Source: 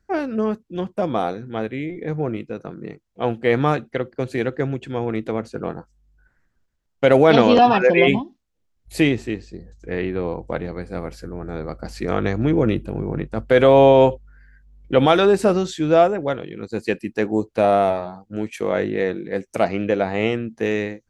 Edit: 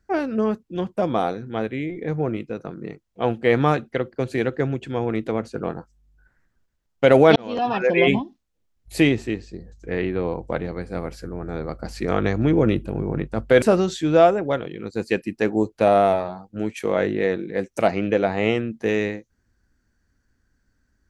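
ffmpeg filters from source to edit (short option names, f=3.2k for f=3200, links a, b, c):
-filter_complex "[0:a]asplit=3[a][b][c];[a]atrim=end=7.36,asetpts=PTS-STARTPTS,afade=t=out:st=7.356:d=0.004:c=hsin[d];[b]atrim=start=7.36:end=13.622,asetpts=PTS-STARTPTS,afade=t=in:d=0.86[e];[c]atrim=start=15.388[f];[d][e]concat=n=2:v=0:a=1[g];[g][f]acrossfade=d=0.004:c1=hsin:c2=hsin"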